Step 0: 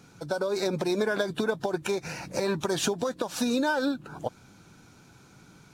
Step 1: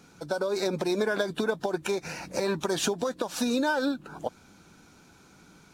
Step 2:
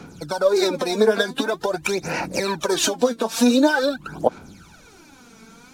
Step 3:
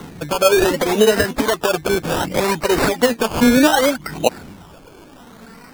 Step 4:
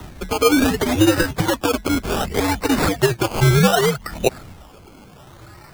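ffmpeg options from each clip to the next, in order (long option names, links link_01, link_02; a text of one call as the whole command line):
ffmpeg -i in.wav -af "equalizer=frequency=120:width_type=o:width=0.38:gain=-12.5" out.wav
ffmpeg -i in.wav -filter_complex "[0:a]aphaser=in_gain=1:out_gain=1:delay=4.5:decay=0.72:speed=0.46:type=sinusoidal,acrossover=split=210|2000[link_01][link_02][link_03];[link_01]acompressor=threshold=-44dB:ratio=6[link_04];[link_04][link_02][link_03]amix=inputs=3:normalize=0,volume=5.5dB" out.wav
ffmpeg -i in.wav -filter_complex "[0:a]asplit=2[link_01][link_02];[link_02]alimiter=limit=-13.5dB:level=0:latency=1,volume=-0.5dB[link_03];[link_01][link_03]amix=inputs=2:normalize=0,acrusher=samples=18:mix=1:aa=0.000001:lfo=1:lforange=10.8:lforate=0.66" out.wav
ffmpeg -i in.wav -af "acrusher=bits=6:mode=log:mix=0:aa=0.000001,afreqshift=-110,volume=-1.5dB" out.wav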